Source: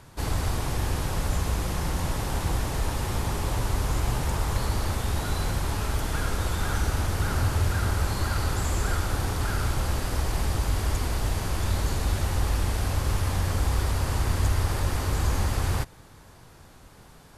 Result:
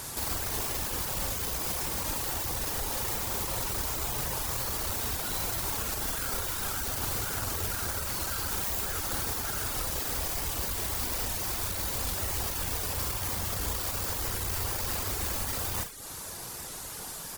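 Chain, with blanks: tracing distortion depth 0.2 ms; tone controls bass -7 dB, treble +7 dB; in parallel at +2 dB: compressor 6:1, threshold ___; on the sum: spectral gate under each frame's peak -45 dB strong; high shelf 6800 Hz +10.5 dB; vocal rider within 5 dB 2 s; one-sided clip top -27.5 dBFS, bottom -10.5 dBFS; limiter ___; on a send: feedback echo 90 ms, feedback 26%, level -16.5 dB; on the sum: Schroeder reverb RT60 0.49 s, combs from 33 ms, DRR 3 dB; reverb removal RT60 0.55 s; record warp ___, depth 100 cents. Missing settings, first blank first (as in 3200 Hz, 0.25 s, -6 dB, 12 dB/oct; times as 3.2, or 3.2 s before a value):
-42 dBFS, -19.5 dBFS, 78 rpm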